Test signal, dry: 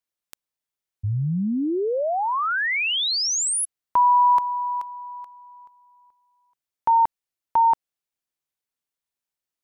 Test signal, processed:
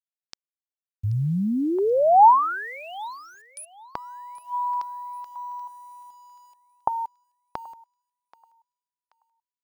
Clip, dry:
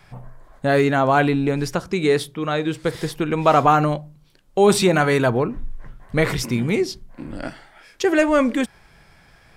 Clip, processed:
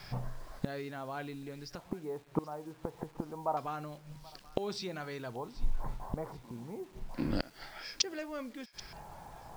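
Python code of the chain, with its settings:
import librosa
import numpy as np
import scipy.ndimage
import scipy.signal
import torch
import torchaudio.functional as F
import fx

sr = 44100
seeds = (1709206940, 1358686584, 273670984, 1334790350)

p1 = fx.high_shelf(x, sr, hz=2800.0, db=-2.5)
p2 = fx.gate_flip(p1, sr, shuts_db=-19.0, range_db=-24)
p3 = fx.filter_lfo_lowpass(p2, sr, shape='square', hz=0.28, low_hz=890.0, high_hz=5100.0, q=4.6)
p4 = fx.quant_dither(p3, sr, seeds[0], bits=10, dither='none')
y = p4 + fx.echo_thinned(p4, sr, ms=781, feedback_pct=38, hz=1200.0, wet_db=-17.0, dry=0)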